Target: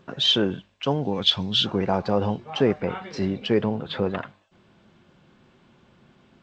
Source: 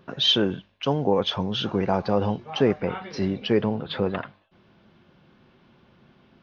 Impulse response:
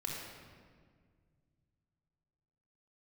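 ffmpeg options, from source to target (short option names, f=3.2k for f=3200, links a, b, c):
-filter_complex "[0:a]asplit=3[a][b][c];[a]afade=t=out:st=1.03:d=0.02[d];[b]equalizer=f=500:t=o:w=1:g=-8,equalizer=f=1k:t=o:w=1:g=-6,equalizer=f=4k:t=o:w=1:g=11,afade=t=in:st=1.03:d=0.02,afade=t=out:st=1.65:d=0.02[e];[c]afade=t=in:st=1.65:d=0.02[f];[d][e][f]amix=inputs=3:normalize=0" -ar 16000 -c:a g722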